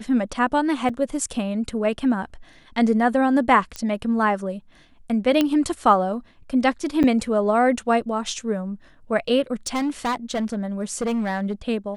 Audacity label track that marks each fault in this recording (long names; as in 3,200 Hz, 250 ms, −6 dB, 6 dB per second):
0.890000	0.890000	drop-out 4.3 ms
3.760000	3.760000	click −15 dBFS
5.410000	5.410000	click −7 dBFS
7.030000	7.040000	drop-out 8.5 ms
9.670000	11.530000	clipping −20 dBFS